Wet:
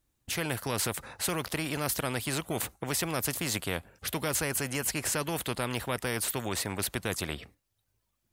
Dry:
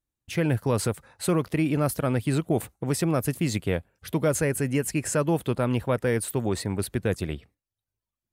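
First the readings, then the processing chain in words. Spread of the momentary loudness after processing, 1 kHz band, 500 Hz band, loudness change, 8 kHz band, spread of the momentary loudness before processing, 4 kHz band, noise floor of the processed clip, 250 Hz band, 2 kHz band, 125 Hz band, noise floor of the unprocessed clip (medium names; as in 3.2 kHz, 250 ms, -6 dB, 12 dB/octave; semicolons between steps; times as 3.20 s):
5 LU, -2.5 dB, -8.5 dB, -5.0 dB, +1.5 dB, 6 LU, +4.5 dB, -79 dBFS, -9.5 dB, +0.5 dB, -10.0 dB, under -85 dBFS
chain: spectrum-flattening compressor 2:1; trim -2.5 dB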